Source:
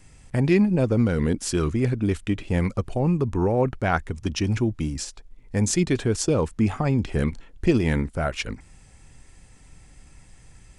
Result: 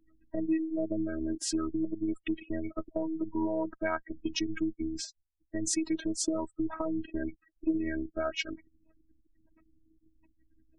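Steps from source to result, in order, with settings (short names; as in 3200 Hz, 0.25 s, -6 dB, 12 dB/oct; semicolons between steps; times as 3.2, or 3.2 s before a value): spectral gate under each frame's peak -20 dB strong; low-pass opened by the level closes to 1700 Hz, open at -20 dBFS; spectral gate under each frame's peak -30 dB strong; HPF 74 Hz 24 dB/oct; low shelf 200 Hz -7.5 dB; compressor 2.5:1, threshold -29 dBFS, peak gain reduction 9 dB; robotiser 319 Hz; gain +2 dB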